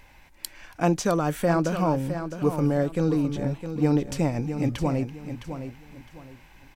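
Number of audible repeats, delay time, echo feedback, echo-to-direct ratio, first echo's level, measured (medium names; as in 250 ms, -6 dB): 3, 661 ms, 28%, -9.0 dB, -9.5 dB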